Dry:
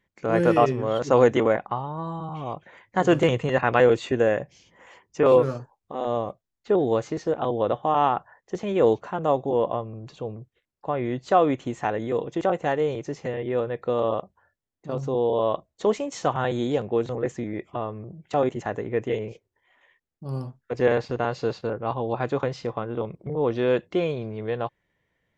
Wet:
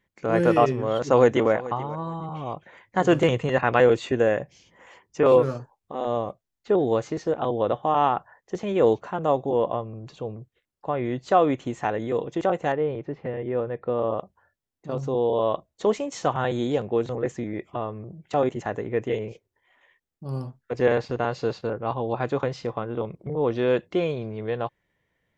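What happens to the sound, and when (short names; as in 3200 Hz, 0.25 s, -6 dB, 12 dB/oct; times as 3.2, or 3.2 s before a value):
0.92–1.52 echo throw 0.43 s, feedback 20%, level -18 dB
12.72–14.19 air absorption 430 m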